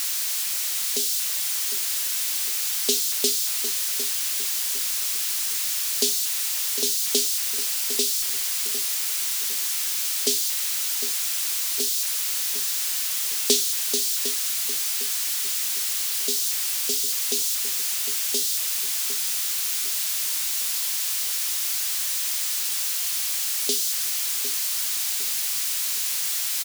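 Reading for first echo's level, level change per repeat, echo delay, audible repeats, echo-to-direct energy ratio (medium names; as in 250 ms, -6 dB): -11.0 dB, -8.0 dB, 755 ms, 3, -10.5 dB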